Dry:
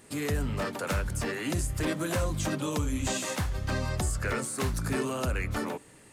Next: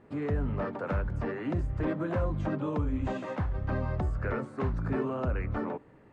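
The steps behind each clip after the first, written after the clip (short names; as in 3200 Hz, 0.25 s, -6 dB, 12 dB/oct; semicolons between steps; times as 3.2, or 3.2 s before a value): LPF 1300 Hz 12 dB/oct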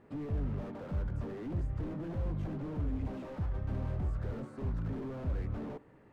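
slew limiter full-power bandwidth 5.8 Hz; gain -3 dB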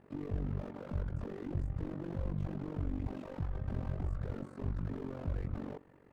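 AM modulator 47 Hz, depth 80%; gain +2 dB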